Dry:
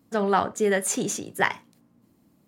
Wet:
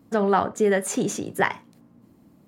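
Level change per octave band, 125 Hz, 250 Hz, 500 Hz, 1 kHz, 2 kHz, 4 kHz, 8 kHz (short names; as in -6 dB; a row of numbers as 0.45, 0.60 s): +3.0, +3.0, +2.5, +1.0, -0.5, -2.0, -3.0 dB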